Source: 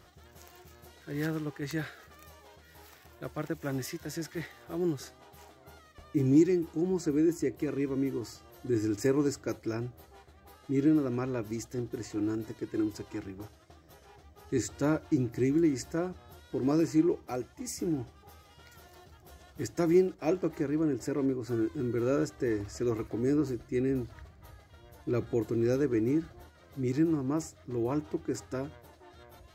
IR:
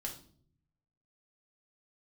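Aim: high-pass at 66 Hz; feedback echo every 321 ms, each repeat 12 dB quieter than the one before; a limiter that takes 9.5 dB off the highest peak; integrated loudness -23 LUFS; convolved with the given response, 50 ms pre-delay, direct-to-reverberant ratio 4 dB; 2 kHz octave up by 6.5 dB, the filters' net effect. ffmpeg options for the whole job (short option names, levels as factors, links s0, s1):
-filter_complex "[0:a]highpass=66,equalizer=f=2000:t=o:g=8,alimiter=limit=0.0794:level=0:latency=1,aecho=1:1:321|642|963:0.251|0.0628|0.0157,asplit=2[s0][s1];[1:a]atrim=start_sample=2205,adelay=50[s2];[s1][s2]afir=irnorm=-1:irlink=0,volume=0.708[s3];[s0][s3]amix=inputs=2:normalize=0,volume=2.51"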